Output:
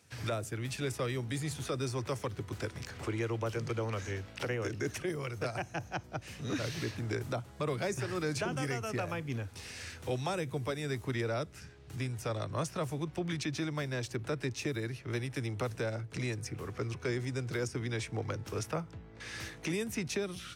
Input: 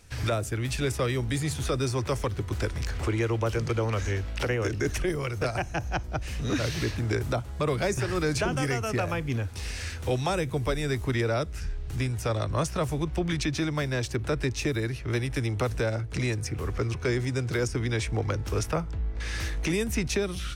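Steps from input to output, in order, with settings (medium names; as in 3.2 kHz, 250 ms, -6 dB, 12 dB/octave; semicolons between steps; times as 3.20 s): high-pass 100 Hz 24 dB/octave; trim -7 dB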